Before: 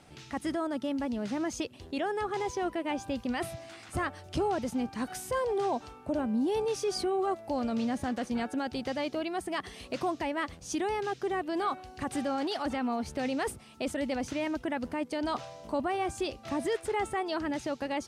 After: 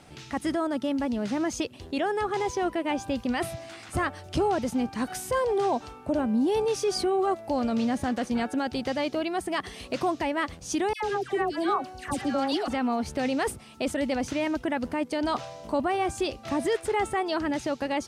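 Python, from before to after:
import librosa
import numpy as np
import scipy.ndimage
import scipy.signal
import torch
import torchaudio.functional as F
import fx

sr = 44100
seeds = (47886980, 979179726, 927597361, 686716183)

y = fx.dispersion(x, sr, late='lows', ms=103.0, hz=1400.0, at=(10.93, 12.68))
y = y * 10.0 ** (4.5 / 20.0)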